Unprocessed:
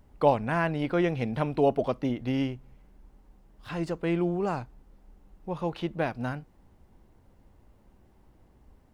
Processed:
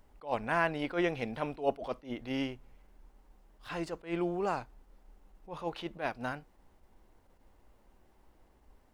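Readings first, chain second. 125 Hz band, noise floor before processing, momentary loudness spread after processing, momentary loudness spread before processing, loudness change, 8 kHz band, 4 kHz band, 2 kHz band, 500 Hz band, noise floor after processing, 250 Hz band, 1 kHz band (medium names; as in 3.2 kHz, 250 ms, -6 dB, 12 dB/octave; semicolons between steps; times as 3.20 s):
-12.0 dB, -61 dBFS, 11 LU, 13 LU, -6.0 dB, no reading, -1.5 dB, -1.0 dB, -7.0 dB, -65 dBFS, -7.5 dB, -4.5 dB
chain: peaking EQ 120 Hz -11.5 dB 2.5 oct; attacks held to a fixed rise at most 210 dB/s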